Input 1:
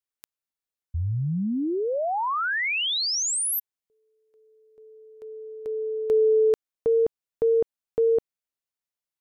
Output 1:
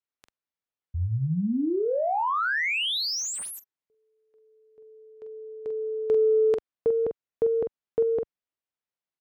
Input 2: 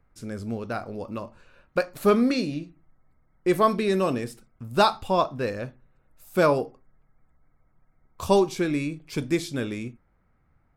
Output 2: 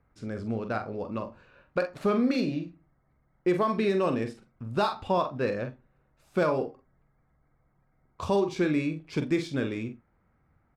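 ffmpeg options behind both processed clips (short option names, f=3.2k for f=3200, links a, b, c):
-filter_complex "[0:a]asplit=2[a][b];[b]adelay=45,volume=-8dB[c];[a][c]amix=inputs=2:normalize=0,adynamicsmooth=sensitivity=3.5:basefreq=5.6k,alimiter=limit=-15.5dB:level=0:latency=1:release=184,highpass=f=61:p=1,highshelf=f=4.9k:g=-5.5"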